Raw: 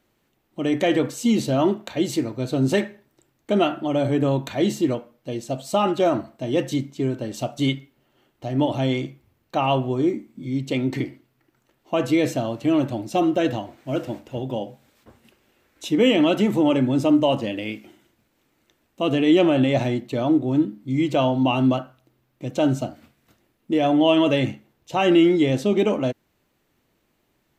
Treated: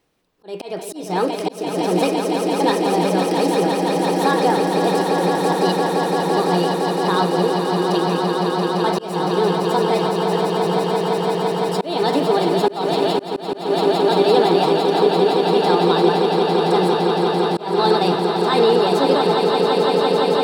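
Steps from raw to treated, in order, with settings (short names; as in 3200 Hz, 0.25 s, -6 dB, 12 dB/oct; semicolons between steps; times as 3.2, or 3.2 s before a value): speed mistake 33 rpm record played at 45 rpm; swelling echo 0.17 s, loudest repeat 8, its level -7 dB; auto swell 0.25 s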